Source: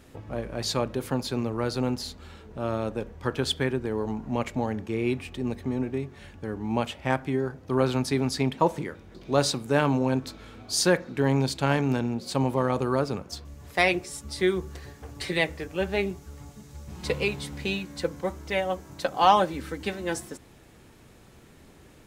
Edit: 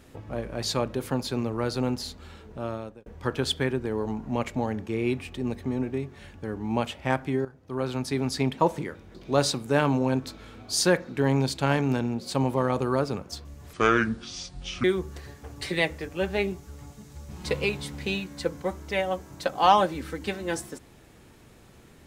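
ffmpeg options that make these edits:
-filter_complex "[0:a]asplit=5[a][b][c][d][e];[a]atrim=end=3.06,asetpts=PTS-STARTPTS,afade=t=out:st=2.5:d=0.56[f];[b]atrim=start=3.06:end=7.45,asetpts=PTS-STARTPTS,afade=t=in:d=0.004:c=hsin,afade=t=out:st=4.386:d=0.004:c=hsin:silence=0.211349[g];[c]atrim=start=7.45:end=13.734,asetpts=PTS-STARTPTS,afade=t=in:d=0.98:silence=0.211349[h];[d]atrim=start=13.73:end=14.43,asetpts=PTS-STARTPTS,asetrate=27783,aresample=44100[i];[e]atrim=start=14.426[j];[f][g][h]concat=n=3:v=0:a=1[k];[k][i]acrossfade=d=0.004:c1=hsin:c2=hsin[l];[l][j]acrossfade=d=0.004:c1=hsin:c2=hsin"

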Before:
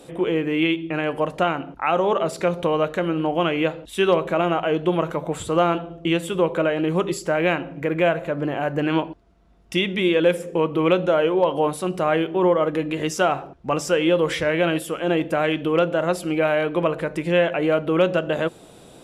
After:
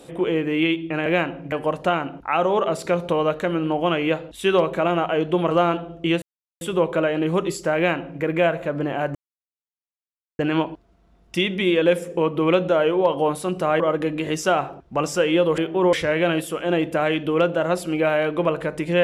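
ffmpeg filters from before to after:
-filter_complex "[0:a]asplit=9[a][b][c][d][e][f][g][h][i];[a]atrim=end=1.062[j];[b]atrim=start=7.378:end=7.842[k];[c]atrim=start=1.058:end=5.052[l];[d]atrim=start=5.518:end=6.23,asetpts=PTS-STARTPTS,afade=t=out:st=0.708:d=0.004:c=hsin,apad=pad_dur=0.39[m];[e]atrim=start=6.23:end=8.77,asetpts=PTS-STARTPTS,afade=t=in:d=0.004:c=hsin,afade=t=out:st=2.536:d=0.004:c=hsin,apad=pad_dur=1.24[n];[f]atrim=start=8.77:end=12.182,asetpts=PTS-STARTPTS,afade=t=in:d=0.004:c=hsin[o];[g]atrim=start=12.528:end=14.312[p];[h]atrim=start=12.178:end=12.532[q];[i]atrim=start=14.308[r];[j][k]acrossfade=d=0.004:c1=hsin:c2=hsin[s];[s][l]acrossfade=d=0.004:c1=hsin:c2=hsin[t];[m][n][o]concat=n=3:v=0:a=1[u];[t][u]acrossfade=d=0.004:c1=hsin:c2=hsin[v];[v][p]acrossfade=d=0.004:c1=hsin:c2=hsin[w];[w][q]acrossfade=d=0.004:c1=hsin:c2=hsin[x];[x][r]acrossfade=d=0.004:c1=hsin:c2=hsin"

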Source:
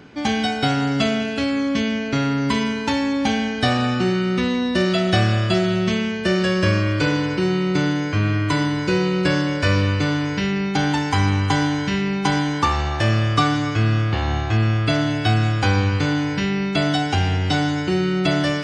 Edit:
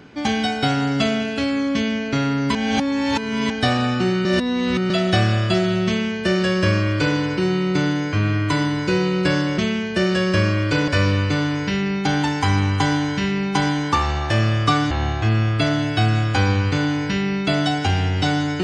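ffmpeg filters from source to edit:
-filter_complex "[0:a]asplit=8[a][b][c][d][e][f][g][h];[a]atrim=end=2.552[i];[b]atrim=start=2.548:end=3.502,asetpts=PTS-STARTPTS,areverse[j];[c]atrim=start=3.498:end=4.252[k];[d]atrim=start=4.248:end=4.902,asetpts=PTS-STARTPTS,areverse[l];[e]atrim=start=4.898:end=9.582[m];[f]atrim=start=5.868:end=7.172[n];[g]atrim=start=9.578:end=13.612[o];[h]atrim=start=14.188[p];[i][j]acrossfade=d=0.004:c1=hsin:c2=hsin[q];[q][k]acrossfade=d=0.004:c1=hsin:c2=hsin[r];[r][l]acrossfade=d=0.004:c1=hsin:c2=hsin[s];[s][m]acrossfade=d=0.004:c1=hsin:c2=hsin[t];[t][n]acrossfade=d=0.004:c1=hsin:c2=hsin[u];[u][o]acrossfade=d=0.004:c1=hsin:c2=hsin[v];[v][p]acrossfade=d=0.004:c1=hsin:c2=hsin"

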